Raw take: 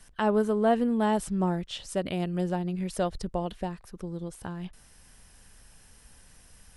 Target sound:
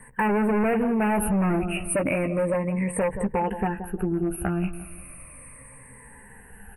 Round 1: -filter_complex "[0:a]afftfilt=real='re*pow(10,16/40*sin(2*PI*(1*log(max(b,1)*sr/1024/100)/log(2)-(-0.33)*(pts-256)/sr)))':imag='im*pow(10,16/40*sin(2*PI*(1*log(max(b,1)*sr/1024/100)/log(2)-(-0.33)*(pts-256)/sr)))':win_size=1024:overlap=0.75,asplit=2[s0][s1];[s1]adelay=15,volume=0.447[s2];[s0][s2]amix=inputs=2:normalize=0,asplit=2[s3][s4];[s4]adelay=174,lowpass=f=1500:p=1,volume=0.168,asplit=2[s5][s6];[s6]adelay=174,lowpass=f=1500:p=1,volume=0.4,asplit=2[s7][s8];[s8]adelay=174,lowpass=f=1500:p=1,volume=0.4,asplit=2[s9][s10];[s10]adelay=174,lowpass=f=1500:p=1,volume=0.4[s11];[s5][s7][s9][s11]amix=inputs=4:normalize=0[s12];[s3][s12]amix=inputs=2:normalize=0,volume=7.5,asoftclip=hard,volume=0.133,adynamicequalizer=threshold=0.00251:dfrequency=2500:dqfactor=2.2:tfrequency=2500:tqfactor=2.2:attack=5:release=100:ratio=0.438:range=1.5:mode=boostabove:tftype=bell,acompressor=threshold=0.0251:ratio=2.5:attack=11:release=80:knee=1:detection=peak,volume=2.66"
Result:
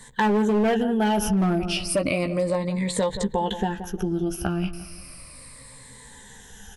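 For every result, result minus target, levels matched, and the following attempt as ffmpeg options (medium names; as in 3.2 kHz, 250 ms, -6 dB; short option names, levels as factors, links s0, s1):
4 kHz band +12.5 dB; overload inside the chain: distortion -7 dB
-filter_complex "[0:a]afftfilt=real='re*pow(10,16/40*sin(2*PI*(1*log(max(b,1)*sr/1024/100)/log(2)-(-0.33)*(pts-256)/sr)))':imag='im*pow(10,16/40*sin(2*PI*(1*log(max(b,1)*sr/1024/100)/log(2)-(-0.33)*(pts-256)/sr)))':win_size=1024:overlap=0.75,asplit=2[s0][s1];[s1]adelay=15,volume=0.447[s2];[s0][s2]amix=inputs=2:normalize=0,asplit=2[s3][s4];[s4]adelay=174,lowpass=f=1500:p=1,volume=0.168,asplit=2[s5][s6];[s6]adelay=174,lowpass=f=1500:p=1,volume=0.4,asplit=2[s7][s8];[s8]adelay=174,lowpass=f=1500:p=1,volume=0.4,asplit=2[s9][s10];[s10]adelay=174,lowpass=f=1500:p=1,volume=0.4[s11];[s5][s7][s9][s11]amix=inputs=4:normalize=0[s12];[s3][s12]amix=inputs=2:normalize=0,volume=7.5,asoftclip=hard,volume=0.133,adynamicequalizer=threshold=0.00251:dfrequency=2500:dqfactor=2.2:tfrequency=2500:tqfactor=2.2:attack=5:release=100:ratio=0.438:range=1.5:mode=boostabove:tftype=bell,asuperstop=centerf=4900:order=20:qfactor=0.87,acompressor=threshold=0.0251:ratio=2.5:attack=11:release=80:knee=1:detection=peak,volume=2.66"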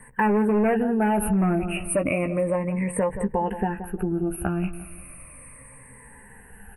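overload inside the chain: distortion -7 dB
-filter_complex "[0:a]afftfilt=real='re*pow(10,16/40*sin(2*PI*(1*log(max(b,1)*sr/1024/100)/log(2)-(-0.33)*(pts-256)/sr)))':imag='im*pow(10,16/40*sin(2*PI*(1*log(max(b,1)*sr/1024/100)/log(2)-(-0.33)*(pts-256)/sr)))':win_size=1024:overlap=0.75,asplit=2[s0][s1];[s1]adelay=15,volume=0.447[s2];[s0][s2]amix=inputs=2:normalize=0,asplit=2[s3][s4];[s4]adelay=174,lowpass=f=1500:p=1,volume=0.168,asplit=2[s5][s6];[s6]adelay=174,lowpass=f=1500:p=1,volume=0.4,asplit=2[s7][s8];[s8]adelay=174,lowpass=f=1500:p=1,volume=0.4,asplit=2[s9][s10];[s10]adelay=174,lowpass=f=1500:p=1,volume=0.4[s11];[s5][s7][s9][s11]amix=inputs=4:normalize=0[s12];[s3][s12]amix=inputs=2:normalize=0,volume=16.8,asoftclip=hard,volume=0.0596,adynamicequalizer=threshold=0.00251:dfrequency=2500:dqfactor=2.2:tfrequency=2500:tqfactor=2.2:attack=5:release=100:ratio=0.438:range=1.5:mode=boostabove:tftype=bell,asuperstop=centerf=4900:order=20:qfactor=0.87,acompressor=threshold=0.0251:ratio=2.5:attack=11:release=80:knee=1:detection=peak,volume=2.66"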